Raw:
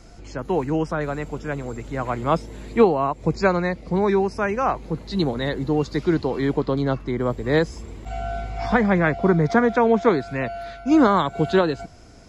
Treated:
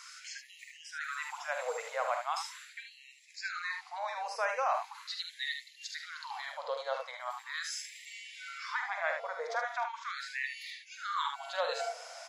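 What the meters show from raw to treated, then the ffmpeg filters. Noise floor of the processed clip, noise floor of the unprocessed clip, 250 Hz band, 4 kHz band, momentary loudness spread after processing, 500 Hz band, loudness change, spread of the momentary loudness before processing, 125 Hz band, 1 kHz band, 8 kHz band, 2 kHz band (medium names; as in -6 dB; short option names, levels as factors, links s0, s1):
-57 dBFS, -44 dBFS, under -40 dB, -4.0 dB, 11 LU, -18.5 dB, -15.0 dB, 12 LU, under -40 dB, -11.0 dB, no reading, -8.0 dB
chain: -filter_complex "[0:a]areverse,acompressor=threshold=0.0282:ratio=4,areverse,aecho=1:1:46|75:0.398|0.473,acrossover=split=170|3000[s0][s1][s2];[s1]acompressor=threshold=0.0178:ratio=2[s3];[s0][s3][s2]amix=inputs=3:normalize=0,afftfilt=real='re*gte(b*sr/1024,440*pow(1800/440,0.5+0.5*sin(2*PI*0.4*pts/sr)))':imag='im*gte(b*sr/1024,440*pow(1800/440,0.5+0.5*sin(2*PI*0.4*pts/sr)))':win_size=1024:overlap=0.75,volume=1.88"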